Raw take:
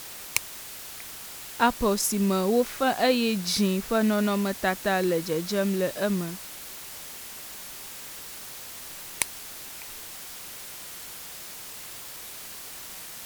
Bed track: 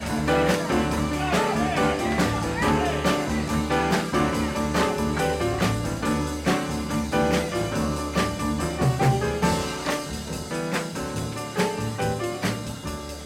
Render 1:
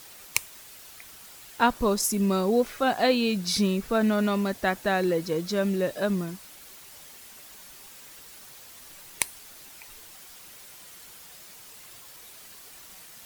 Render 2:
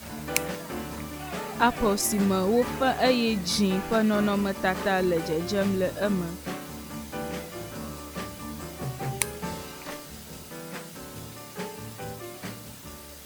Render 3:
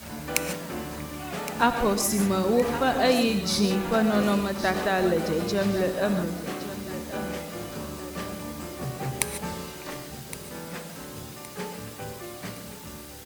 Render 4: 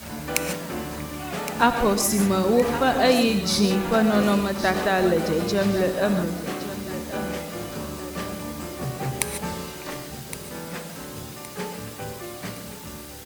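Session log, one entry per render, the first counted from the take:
denoiser 8 dB, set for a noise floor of -41 dBFS
add bed track -12 dB
feedback echo 1.116 s, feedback 45%, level -13 dB; non-linear reverb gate 0.17 s rising, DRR 8.5 dB
gain +3 dB; limiter -3 dBFS, peak gain reduction 2 dB

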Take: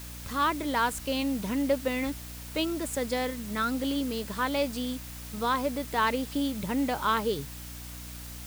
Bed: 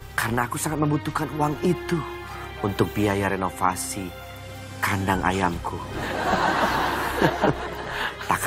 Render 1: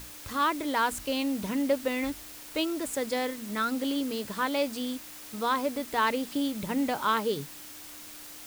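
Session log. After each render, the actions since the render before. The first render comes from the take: notches 60/120/180/240 Hz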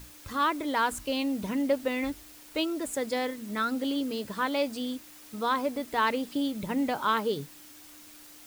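denoiser 6 dB, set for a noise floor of -45 dBFS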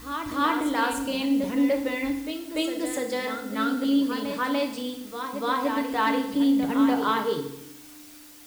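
reverse echo 0.293 s -7.5 dB; FDN reverb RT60 0.79 s, low-frequency decay 1.25×, high-frequency decay 0.95×, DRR 3.5 dB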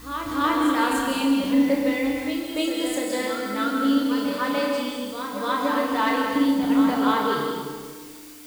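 flutter echo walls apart 5.7 m, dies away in 0.32 s; plate-style reverb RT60 1.5 s, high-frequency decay 0.8×, pre-delay 0.12 s, DRR 2 dB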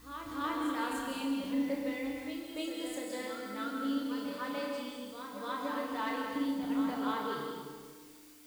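gain -13 dB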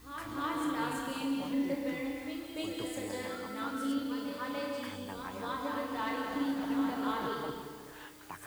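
add bed -23.5 dB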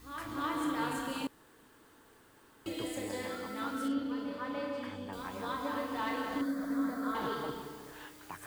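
1.27–2.66 room tone; 3.88–5.13 LPF 2300 Hz 6 dB/oct; 6.41–7.15 fixed phaser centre 570 Hz, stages 8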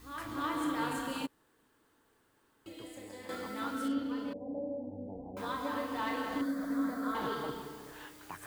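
1.26–3.29 gain -9.5 dB; 4.33–5.37 steep low-pass 790 Hz 72 dB/oct

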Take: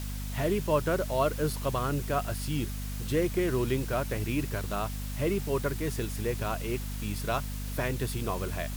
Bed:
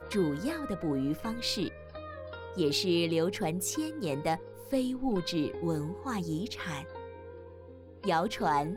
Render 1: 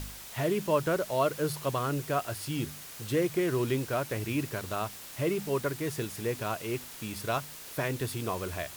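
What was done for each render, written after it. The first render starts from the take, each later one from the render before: de-hum 50 Hz, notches 5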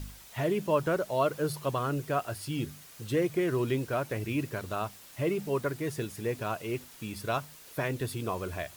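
denoiser 7 dB, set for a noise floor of -45 dBFS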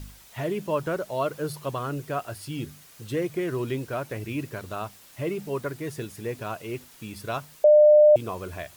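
7.64–8.16 bleep 601 Hz -11 dBFS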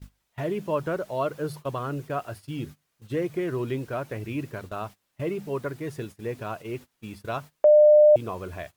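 gate -39 dBFS, range -20 dB; high shelf 3600 Hz -7 dB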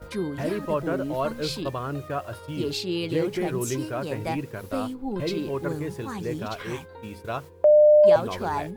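add bed -0.5 dB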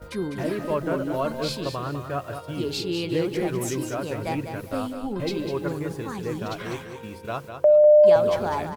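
feedback echo 0.2 s, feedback 27%, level -8 dB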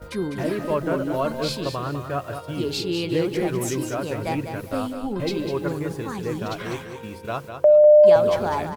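gain +2 dB

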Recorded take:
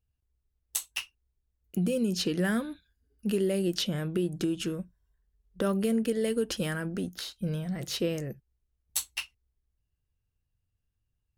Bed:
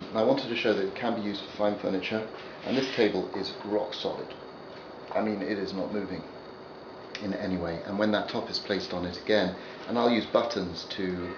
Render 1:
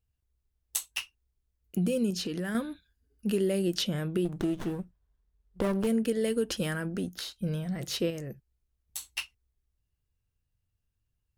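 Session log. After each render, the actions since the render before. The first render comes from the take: 2.1–2.55 compressor 4:1, threshold -30 dBFS; 4.25–5.87 running maximum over 17 samples; 8.1–9.06 compressor 3:1, threshold -35 dBFS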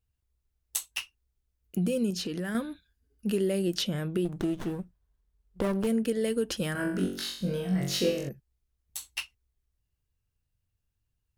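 6.73–8.29 flutter echo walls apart 3.7 m, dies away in 0.54 s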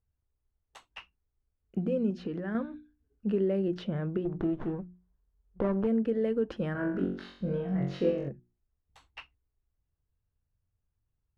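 LPF 1400 Hz 12 dB/oct; notches 60/120/180/240/300/360 Hz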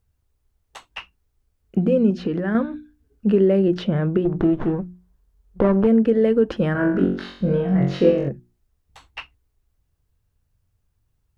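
gain +11.5 dB

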